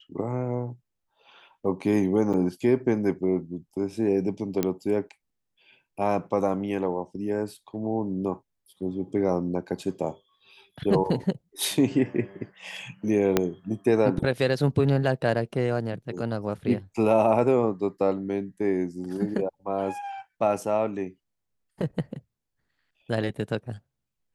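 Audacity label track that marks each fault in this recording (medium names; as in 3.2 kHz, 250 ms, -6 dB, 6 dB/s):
2.330000	2.340000	dropout 6.7 ms
4.630000	4.630000	pop -11 dBFS
13.370000	13.370000	pop -6 dBFS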